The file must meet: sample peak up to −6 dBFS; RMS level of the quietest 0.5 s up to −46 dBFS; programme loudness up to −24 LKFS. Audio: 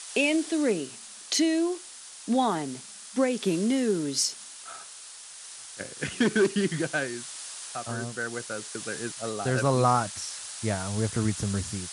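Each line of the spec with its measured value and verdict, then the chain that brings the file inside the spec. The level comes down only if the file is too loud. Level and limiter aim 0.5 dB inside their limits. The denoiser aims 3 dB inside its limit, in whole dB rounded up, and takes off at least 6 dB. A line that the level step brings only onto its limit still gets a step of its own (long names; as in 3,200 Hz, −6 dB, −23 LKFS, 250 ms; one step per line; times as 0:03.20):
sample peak −10.0 dBFS: in spec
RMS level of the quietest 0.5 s −45 dBFS: out of spec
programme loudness −28.0 LKFS: in spec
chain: broadband denoise 6 dB, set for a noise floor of −45 dBFS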